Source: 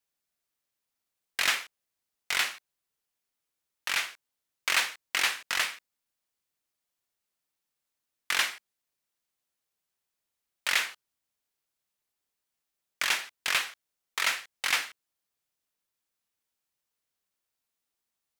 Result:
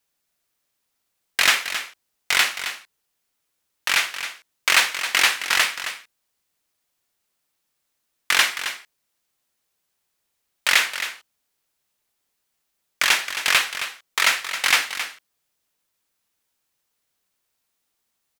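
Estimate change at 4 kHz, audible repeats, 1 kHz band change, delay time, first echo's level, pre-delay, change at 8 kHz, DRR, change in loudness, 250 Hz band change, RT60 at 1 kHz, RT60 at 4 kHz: +9.5 dB, 1, +9.5 dB, 268 ms, −10.5 dB, no reverb audible, +9.5 dB, no reverb audible, +8.5 dB, +9.5 dB, no reverb audible, no reverb audible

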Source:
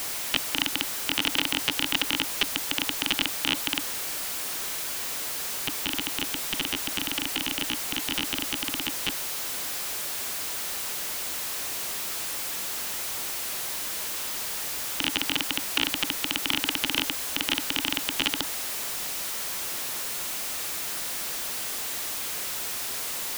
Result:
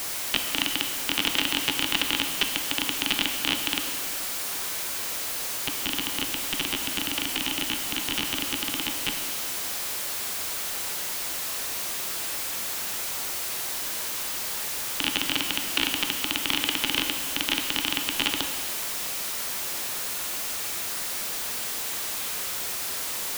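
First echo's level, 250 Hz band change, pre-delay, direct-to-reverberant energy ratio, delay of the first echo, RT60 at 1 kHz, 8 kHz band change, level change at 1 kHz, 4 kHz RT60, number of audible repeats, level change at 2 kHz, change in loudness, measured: no echo audible, +1.0 dB, 5 ms, 5.0 dB, no echo audible, 1.8 s, +1.0 dB, +1.5 dB, 1.7 s, no echo audible, +1.0 dB, +1.0 dB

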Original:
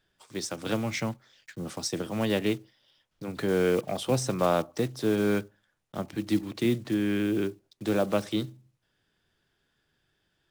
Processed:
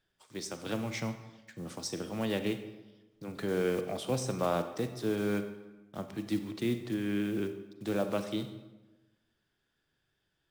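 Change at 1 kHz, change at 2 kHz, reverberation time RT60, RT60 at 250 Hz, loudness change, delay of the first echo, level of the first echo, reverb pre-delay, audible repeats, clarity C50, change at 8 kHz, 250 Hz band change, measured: −5.5 dB, −5.5 dB, 1.1 s, 1.3 s, −5.5 dB, no echo audible, no echo audible, 35 ms, no echo audible, 10.0 dB, −5.5 dB, −5.5 dB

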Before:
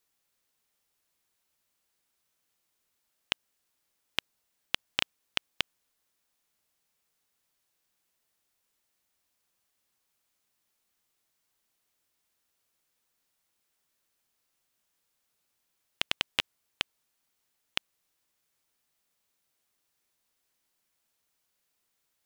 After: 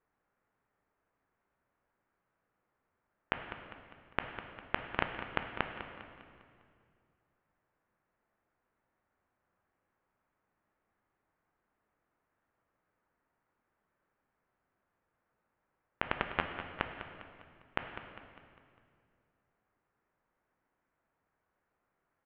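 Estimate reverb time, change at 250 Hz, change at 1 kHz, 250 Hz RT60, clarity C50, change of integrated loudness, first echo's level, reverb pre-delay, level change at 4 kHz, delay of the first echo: 2.2 s, +7.0 dB, +6.5 dB, 2.6 s, 5.5 dB, −5.5 dB, −11.5 dB, 11 ms, −14.5 dB, 201 ms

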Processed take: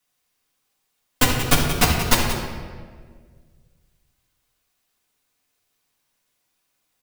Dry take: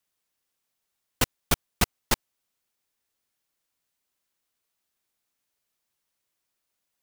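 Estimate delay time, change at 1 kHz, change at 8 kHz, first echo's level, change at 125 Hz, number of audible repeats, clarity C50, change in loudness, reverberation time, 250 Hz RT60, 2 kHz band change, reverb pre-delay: 180 ms, +9.5 dB, +7.5 dB, −9.0 dB, +10.5 dB, 1, 2.0 dB, +8.0 dB, 1.7 s, 2.1 s, +9.5 dB, 4 ms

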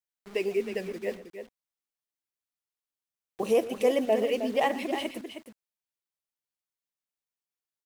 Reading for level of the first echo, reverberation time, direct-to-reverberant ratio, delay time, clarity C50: −17.0 dB, no reverb audible, no reverb audible, 118 ms, no reverb audible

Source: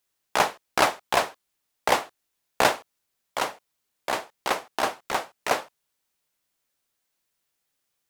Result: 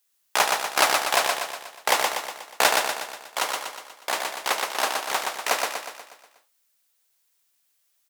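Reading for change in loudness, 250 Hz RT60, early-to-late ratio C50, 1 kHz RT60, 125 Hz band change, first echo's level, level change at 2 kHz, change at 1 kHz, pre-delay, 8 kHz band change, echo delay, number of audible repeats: +2.5 dB, no reverb audible, no reverb audible, no reverb audible, can't be measured, −3.5 dB, +4.0 dB, +1.5 dB, no reverb audible, +8.0 dB, 121 ms, 6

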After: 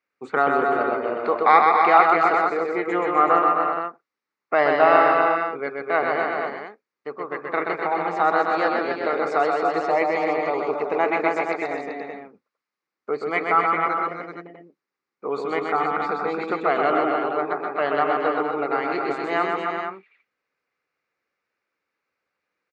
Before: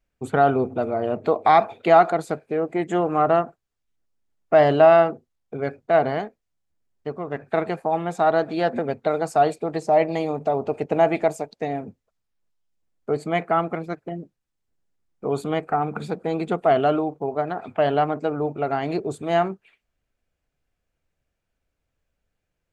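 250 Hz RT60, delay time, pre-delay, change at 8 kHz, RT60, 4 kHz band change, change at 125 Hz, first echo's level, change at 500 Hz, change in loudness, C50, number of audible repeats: no reverb audible, 128 ms, no reverb audible, can't be measured, no reverb audible, 0.0 dB, −12.5 dB, −3.5 dB, −2.0 dB, +0.5 dB, no reverb audible, 4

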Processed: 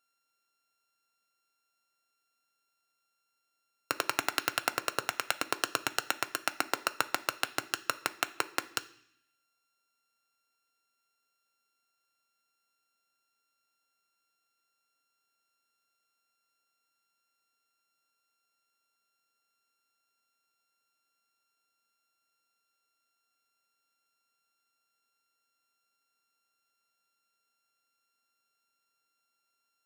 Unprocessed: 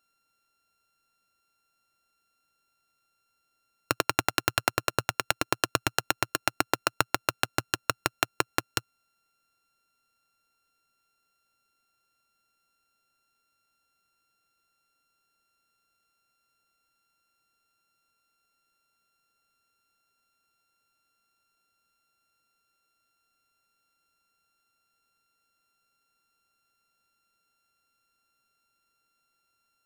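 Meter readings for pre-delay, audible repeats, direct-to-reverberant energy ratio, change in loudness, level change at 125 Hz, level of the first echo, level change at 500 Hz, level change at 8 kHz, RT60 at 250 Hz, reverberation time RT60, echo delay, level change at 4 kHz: 3 ms, no echo audible, 10.0 dB, −4.0 dB, −16.0 dB, no echo audible, −6.0 dB, −4.0 dB, 0.95 s, 0.65 s, no echo audible, −4.0 dB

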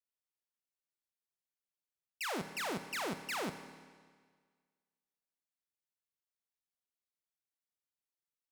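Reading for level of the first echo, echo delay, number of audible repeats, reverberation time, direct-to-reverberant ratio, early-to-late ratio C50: no echo audible, no echo audible, no echo audible, 1.7 s, 8.5 dB, 10.0 dB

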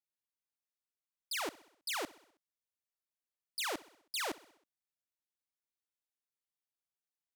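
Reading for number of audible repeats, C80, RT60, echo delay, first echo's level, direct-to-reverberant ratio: 4, no reverb audible, no reverb audible, 64 ms, −20.5 dB, no reverb audible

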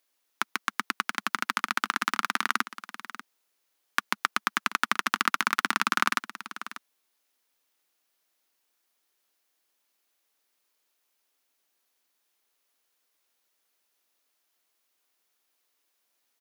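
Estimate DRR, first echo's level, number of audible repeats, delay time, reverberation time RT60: no reverb audible, −14.5 dB, 1, 591 ms, no reverb audible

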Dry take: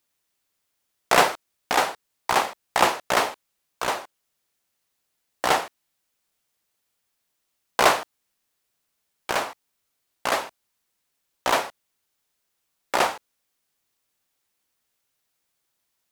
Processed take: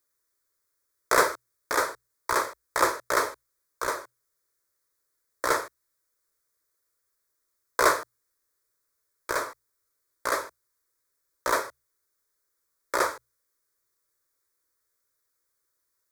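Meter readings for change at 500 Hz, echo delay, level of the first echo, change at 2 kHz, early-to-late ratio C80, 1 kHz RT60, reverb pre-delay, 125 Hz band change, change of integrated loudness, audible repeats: −2.5 dB, no echo audible, no echo audible, −2.5 dB, no reverb audible, no reverb audible, no reverb audible, −7.0 dB, −3.5 dB, no echo audible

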